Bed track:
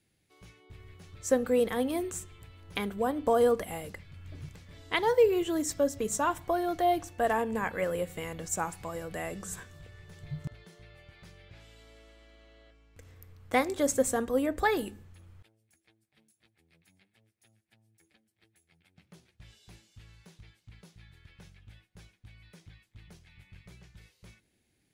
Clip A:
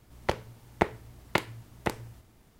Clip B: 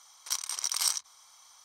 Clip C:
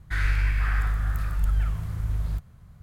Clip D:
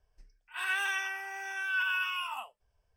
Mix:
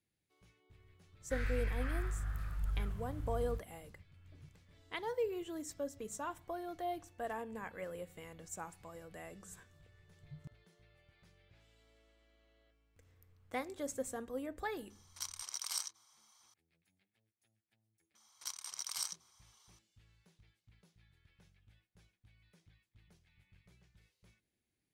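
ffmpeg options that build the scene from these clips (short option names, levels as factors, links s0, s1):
-filter_complex "[2:a]asplit=2[s0][s1];[0:a]volume=0.211[s2];[3:a]atrim=end=2.82,asetpts=PTS-STARTPTS,volume=0.224,afade=t=in:d=0.004:c=hsin,afade=t=out:st=2.816:d=0.004:c=hsin,adelay=1200[s3];[s0]atrim=end=1.64,asetpts=PTS-STARTPTS,volume=0.282,afade=t=in:d=0.004:c=hsin,afade=t=out:st=1.636:d=0.004:c=hsin,adelay=14900[s4];[s1]atrim=end=1.64,asetpts=PTS-STARTPTS,volume=0.266,afade=t=in:d=0.004:c=hsin,afade=t=out:st=1.636:d=0.004:c=hsin,adelay=18150[s5];[s2][s3][s4][s5]amix=inputs=4:normalize=0"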